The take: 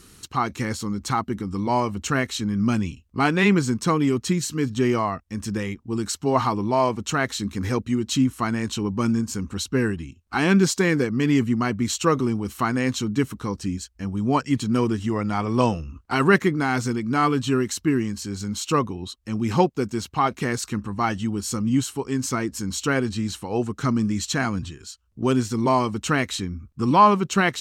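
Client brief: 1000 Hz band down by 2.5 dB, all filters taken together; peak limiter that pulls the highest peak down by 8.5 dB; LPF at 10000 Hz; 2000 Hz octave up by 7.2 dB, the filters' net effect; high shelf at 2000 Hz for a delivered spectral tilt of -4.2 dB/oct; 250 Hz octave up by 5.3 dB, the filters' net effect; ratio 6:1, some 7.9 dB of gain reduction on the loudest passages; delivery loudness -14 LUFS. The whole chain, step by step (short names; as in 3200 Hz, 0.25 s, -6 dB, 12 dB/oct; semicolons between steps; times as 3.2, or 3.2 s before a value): LPF 10000 Hz; bell 250 Hz +6.5 dB; bell 1000 Hz -7.5 dB; high shelf 2000 Hz +8.5 dB; bell 2000 Hz +6.5 dB; compressor 6:1, threshold -17 dBFS; gain +10.5 dB; limiter -4 dBFS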